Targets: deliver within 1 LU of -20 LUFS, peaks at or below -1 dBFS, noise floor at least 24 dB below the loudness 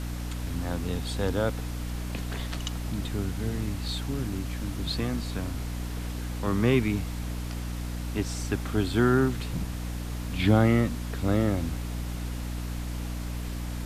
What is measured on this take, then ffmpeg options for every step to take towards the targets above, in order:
hum 60 Hz; harmonics up to 300 Hz; hum level -31 dBFS; noise floor -34 dBFS; noise floor target -54 dBFS; loudness -29.5 LUFS; peak -9.0 dBFS; loudness target -20.0 LUFS
-> -af "bandreject=f=60:t=h:w=4,bandreject=f=120:t=h:w=4,bandreject=f=180:t=h:w=4,bandreject=f=240:t=h:w=4,bandreject=f=300:t=h:w=4"
-af "afftdn=nr=20:nf=-34"
-af "volume=9.5dB,alimiter=limit=-1dB:level=0:latency=1"

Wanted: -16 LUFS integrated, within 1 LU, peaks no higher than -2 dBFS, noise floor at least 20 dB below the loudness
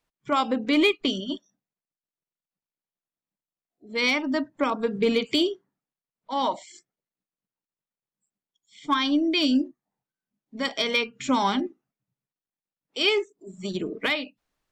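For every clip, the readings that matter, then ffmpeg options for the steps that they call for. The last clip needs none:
loudness -25.0 LUFS; peak -13.0 dBFS; loudness target -16.0 LUFS
-> -af "volume=9dB"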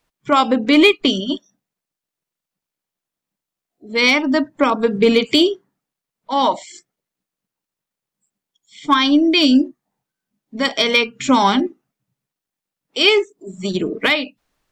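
loudness -16.0 LUFS; peak -4.0 dBFS; noise floor -86 dBFS

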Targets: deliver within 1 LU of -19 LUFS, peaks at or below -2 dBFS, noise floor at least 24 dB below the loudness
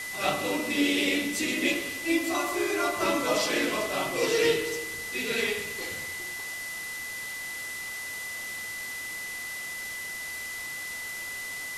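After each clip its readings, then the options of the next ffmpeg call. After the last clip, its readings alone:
steady tone 2000 Hz; tone level -35 dBFS; noise floor -37 dBFS; noise floor target -53 dBFS; loudness -29.0 LUFS; peak -11.0 dBFS; loudness target -19.0 LUFS
-> -af "bandreject=f=2k:w=30"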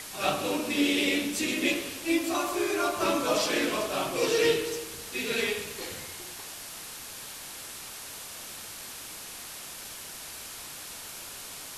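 steady tone none; noise floor -42 dBFS; noise floor target -55 dBFS
-> -af "afftdn=nr=13:nf=-42"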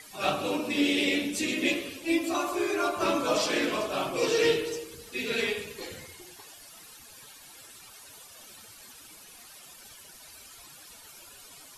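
noise floor -50 dBFS; noise floor target -52 dBFS
-> -af "afftdn=nr=6:nf=-50"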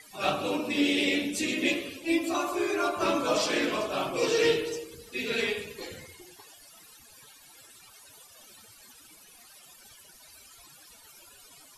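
noise floor -54 dBFS; loudness -28.0 LUFS; peak -11.5 dBFS; loudness target -19.0 LUFS
-> -af "volume=9dB"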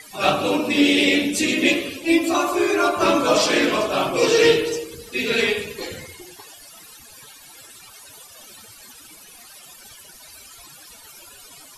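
loudness -19.0 LUFS; peak -2.5 dBFS; noise floor -45 dBFS

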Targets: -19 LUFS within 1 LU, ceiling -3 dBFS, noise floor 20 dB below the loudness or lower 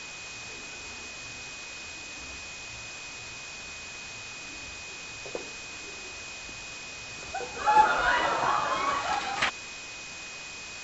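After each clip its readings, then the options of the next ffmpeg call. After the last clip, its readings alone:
steady tone 2500 Hz; tone level -42 dBFS; noise floor -42 dBFS; noise floor target -52 dBFS; loudness -31.5 LUFS; peak -8.0 dBFS; loudness target -19.0 LUFS
-> -af "bandreject=f=2.5k:w=30"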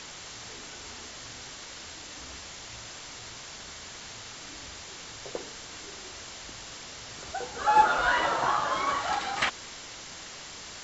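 steady tone none; noise floor -44 dBFS; noise floor target -52 dBFS
-> -af "afftdn=nr=8:nf=-44"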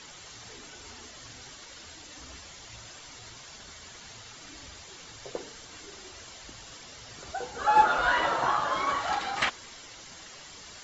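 noise floor -48 dBFS; loudness -27.0 LUFS; peak -8.0 dBFS; loudness target -19.0 LUFS
-> -af "volume=8dB,alimiter=limit=-3dB:level=0:latency=1"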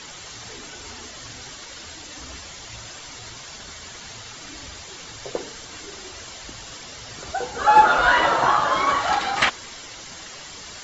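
loudness -19.0 LUFS; peak -3.0 dBFS; noise floor -40 dBFS

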